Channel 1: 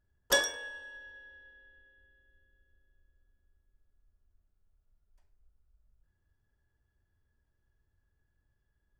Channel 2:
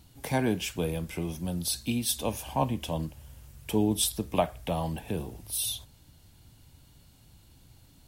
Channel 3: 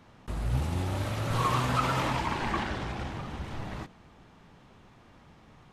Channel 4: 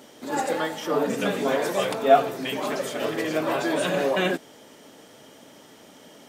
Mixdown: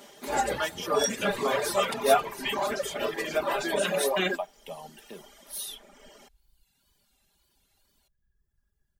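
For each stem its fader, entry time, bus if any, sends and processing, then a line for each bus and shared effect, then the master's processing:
+0.5 dB, 0.60 s, no send, tone controls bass +13 dB, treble +7 dB; attacks held to a fixed rise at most 290 dB/s
-6.0 dB, 0.00 s, no send, high-pass 230 Hz 12 dB/octave; wow and flutter 92 cents
-5.0 dB, 0.00 s, no send, none
-0.5 dB, 0.00 s, no send, none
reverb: none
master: reverb removal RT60 1.1 s; bass shelf 270 Hz -11 dB; comb 5 ms, depth 56%

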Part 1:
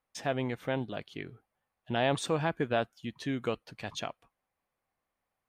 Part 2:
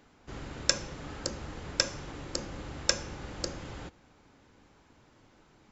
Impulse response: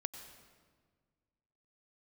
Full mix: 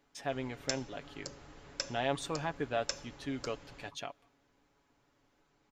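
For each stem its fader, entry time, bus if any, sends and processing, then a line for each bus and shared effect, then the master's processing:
-6.0 dB, 0.00 s, send -23 dB, none
-11.0 dB, 0.00 s, no send, none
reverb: on, RT60 1.7 s, pre-delay 86 ms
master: peaking EQ 130 Hz -5 dB 1.7 oct; comb 7.1 ms, depth 46%

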